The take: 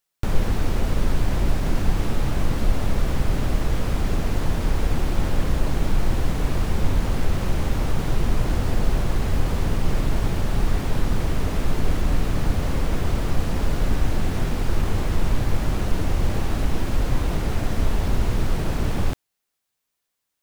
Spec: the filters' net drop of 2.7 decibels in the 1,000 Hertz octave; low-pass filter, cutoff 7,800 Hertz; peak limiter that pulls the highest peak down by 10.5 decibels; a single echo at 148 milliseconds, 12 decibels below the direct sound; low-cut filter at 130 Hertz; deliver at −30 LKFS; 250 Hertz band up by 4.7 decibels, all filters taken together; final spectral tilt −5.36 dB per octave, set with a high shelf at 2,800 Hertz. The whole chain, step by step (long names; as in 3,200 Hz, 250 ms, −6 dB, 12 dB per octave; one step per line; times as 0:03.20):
high-pass filter 130 Hz
low-pass filter 7,800 Hz
parametric band 250 Hz +7 dB
parametric band 1,000 Hz −5 dB
high-shelf EQ 2,800 Hz +6.5 dB
brickwall limiter −23 dBFS
single-tap delay 148 ms −12 dB
level +1.5 dB